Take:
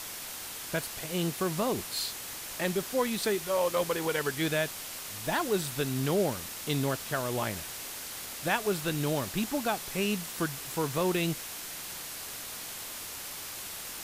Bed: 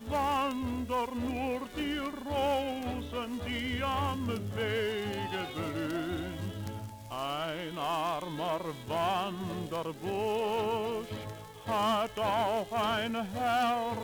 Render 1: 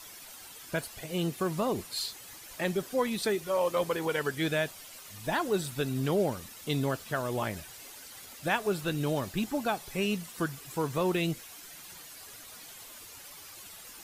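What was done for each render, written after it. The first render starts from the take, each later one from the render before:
broadband denoise 11 dB, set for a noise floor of −41 dBFS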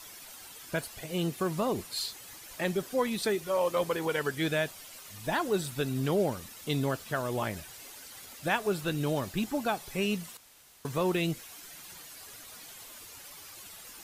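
0:10.37–0:10.85: fill with room tone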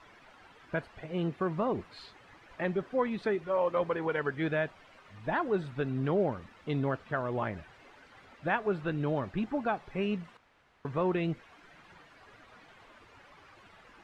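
Chebyshev low-pass filter 1,700 Hz, order 2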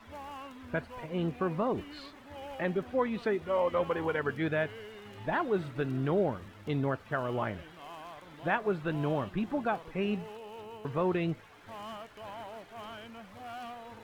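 mix in bed −14.5 dB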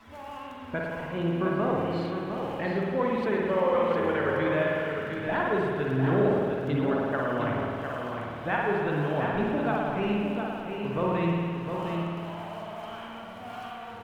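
single-tap delay 707 ms −6 dB
spring reverb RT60 2.1 s, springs 53 ms, chirp 80 ms, DRR −2.5 dB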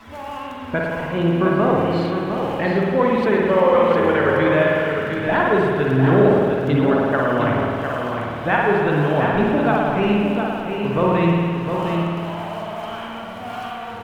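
level +9.5 dB

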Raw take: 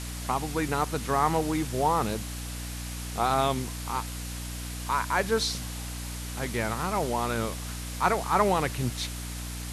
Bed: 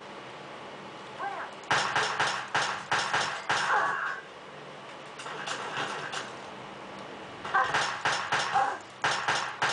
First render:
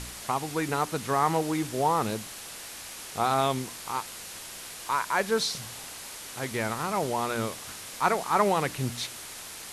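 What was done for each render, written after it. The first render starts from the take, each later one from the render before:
hum removal 60 Hz, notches 5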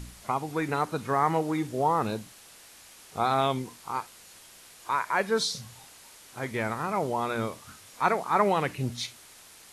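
noise reduction from a noise print 10 dB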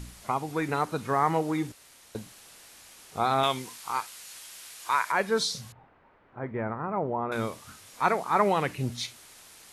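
0:01.72–0:02.15: fill with room tone
0:03.43–0:05.12: tilt shelving filter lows −6.5 dB, about 770 Hz
0:05.72–0:07.32: Bessel low-pass filter 1,200 Hz, order 4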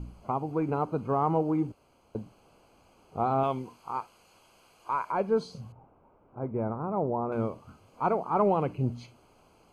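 in parallel at −11 dB: hard clipping −21 dBFS, distortion −12 dB
on the sum: moving average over 24 samples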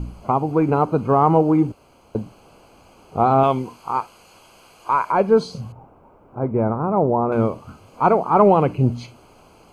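level +11 dB

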